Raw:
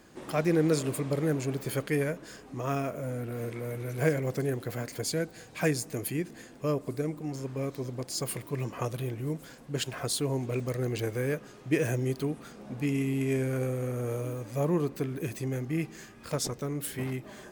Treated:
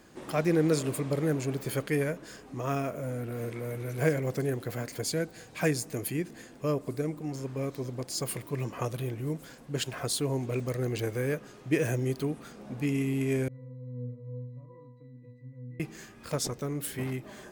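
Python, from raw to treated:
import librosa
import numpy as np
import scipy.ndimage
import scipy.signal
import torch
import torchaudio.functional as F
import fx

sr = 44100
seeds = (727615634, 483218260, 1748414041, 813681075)

y = fx.octave_resonator(x, sr, note='B', decay_s=0.74, at=(13.48, 15.8))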